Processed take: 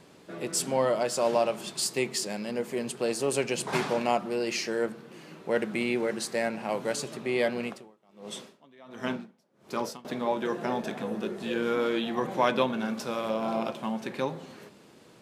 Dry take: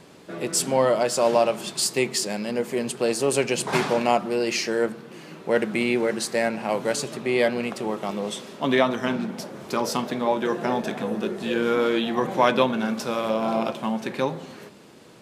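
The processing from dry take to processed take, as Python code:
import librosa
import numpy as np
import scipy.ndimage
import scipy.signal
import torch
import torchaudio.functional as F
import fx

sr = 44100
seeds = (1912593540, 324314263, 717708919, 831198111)

y = fx.tremolo_db(x, sr, hz=1.4, depth_db=31, at=(7.66, 10.05))
y = y * librosa.db_to_amplitude(-5.5)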